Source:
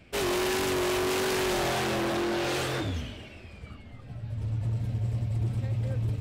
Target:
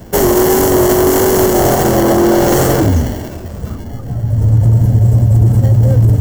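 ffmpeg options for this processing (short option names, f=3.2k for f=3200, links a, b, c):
-filter_complex "[0:a]acrossover=split=130|1200|6600[a][b][c][d];[c]acrusher=samples=35:mix=1:aa=0.000001[e];[a][b][e][d]amix=inputs=4:normalize=0,aexciter=amount=1.4:drive=5.5:freq=5.6k,alimiter=level_in=22dB:limit=-1dB:release=50:level=0:latency=1,volume=-1dB"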